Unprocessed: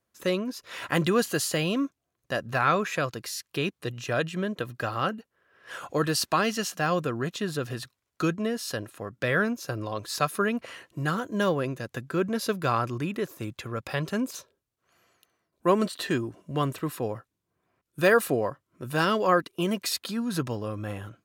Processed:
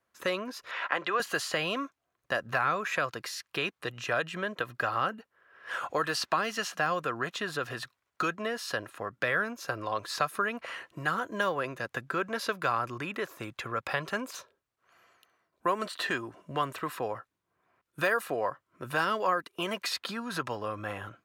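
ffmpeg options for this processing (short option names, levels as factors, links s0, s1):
-filter_complex "[0:a]asettb=1/sr,asplit=3[s0][s1][s2];[s0]atrim=end=0.714[s3];[s1]atrim=start=0.71:end=1.2,asetpts=PTS-STARTPTS,afade=t=in:d=0.004:c=qsin,afade=t=out:st=0.486:d=0.004:c=qsin,highpass=480,lowpass=3600[s4];[s2]atrim=start=1.196[s5];[s3][s4]acrossfade=d=0.004:c1=hsin:c2=qsin[s6];[s6][s5]acrossfade=d=0.004:c1=qsin:c2=hsin,equalizer=f=1300:t=o:w=2.9:g=11,acrossover=split=500|6400[s7][s8][s9];[s7]acompressor=threshold=0.0224:ratio=4[s10];[s8]acompressor=threshold=0.0891:ratio=4[s11];[s9]acompressor=threshold=0.01:ratio=4[s12];[s10][s11][s12]amix=inputs=3:normalize=0,volume=0.531"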